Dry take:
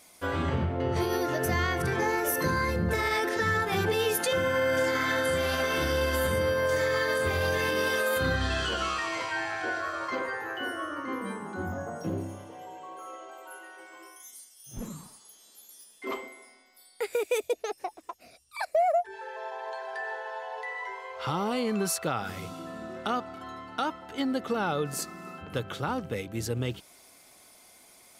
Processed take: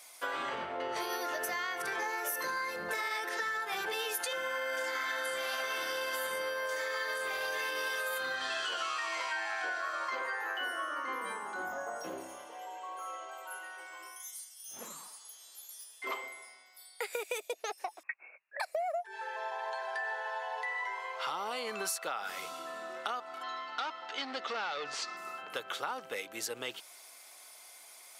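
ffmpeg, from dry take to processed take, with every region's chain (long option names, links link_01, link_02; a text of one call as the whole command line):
ffmpeg -i in.wav -filter_complex "[0:a]asettb=1/sr,asplit=3[link_01][link_02][link_03];[link_01]atrim=end=18.034[link_04];[link_02]atrim=start=18.03:end=18.6,asetpts=PTS-STARTPTS,afade=type=in:duration=0.004:curve=qsin,afade=type=out:start_time=0.566:duration=0.004:curve=qsin,highpass=280,lowpass=frequency=2500:width_type=q:width=0.5098,lowpass=frequency=2500:width_type=q:width=0.6013,lowpass=frequency=2500:width_type=q:width=0.9,lowpass=frequency=2500:width_type=q:width=2.563,afreqshift=-2900[link_05];[link_03]atrim=start=18.596[link_06];[link_04][link_05]acrossfade=duration=0.004:curve1=hsin:curve2=qsin[link_07];[link_07][link_06]acrossfade=duration=0.004:curve1=qsin:curve2=hsin,asettb=1/sr,asplit=3[link_08][link_09][link_10];[link_08]atrim=end=23.434[link_11];[link_09]atrim=start=23.43:end=25.17,asetpts=PTS-STARTPTS,afade=type=in:duration=0.004:curve=qsin,afade=type=out:start_time=1.736:duration=0.004:curve=qsin,highshelf=frequency=4000:gain=12,asoftclip=type=hard:threshold=-27.5dB,lowpass=frequency=5100:width=0.5412,lowpass=frequency=5100:width=1.3066[link_12];[link_10]atrim=start=25.166[link_13];[link_11][link_12]acrossfade=duration=0.004:curve1=hsin:curve2=qsin[link_14];[link_14][link_13]acrossfade=duration=0.004:curve1=qsin:curve2=hsin,highpass=720,acompressor=threshold=-35dB:ratio=6,volume=2.5dB" out.wav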